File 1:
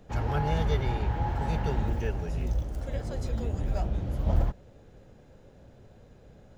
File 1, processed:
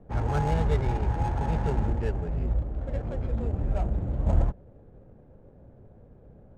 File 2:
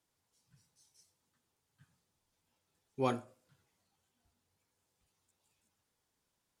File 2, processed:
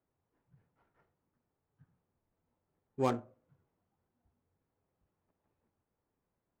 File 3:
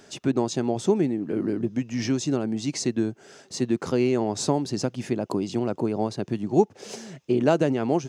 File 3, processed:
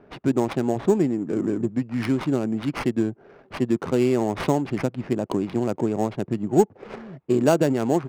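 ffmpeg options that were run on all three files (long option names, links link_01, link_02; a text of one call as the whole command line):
ffmpeg -i in.wav -af "acrusher=samples=6:mix=1:aa=0.000001,adynamicsmooth=sensitivity=5:basefreq=1000,volume=2dB" out.wav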